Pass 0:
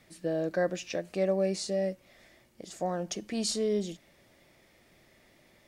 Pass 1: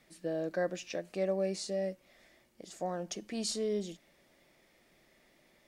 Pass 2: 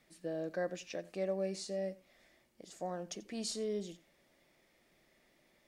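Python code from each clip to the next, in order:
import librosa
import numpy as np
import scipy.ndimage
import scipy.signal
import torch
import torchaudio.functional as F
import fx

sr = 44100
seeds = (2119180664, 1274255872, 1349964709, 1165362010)

y1 = fx.peak_eq(x, sr, hz=93.0, db=-12.0, octaves=0.72)
y1 = F.gain(torch.from_numpy(y1), -4.0).numpy()
y2 = y1 + 10.0 ** (-20.0 / 20.0) * np.pad(y1, (int(88 * sr / 1000.0), 0))[:len(y1)]
y2 = F.gain(torch.from_numpy(y2), -4.0).numpy()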